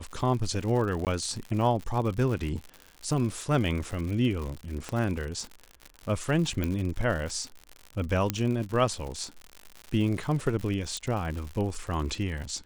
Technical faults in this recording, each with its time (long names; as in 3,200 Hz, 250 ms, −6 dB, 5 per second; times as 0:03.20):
surface crackle 100 per second −33 dBFS
0:01.05–0:01.07: drop-out 18 ms
0:04.89: click −19 dBFS
0:06.64: click −16 dBFS
0:08.30: click −10 dBFS
0:10.97: click −19 dBFS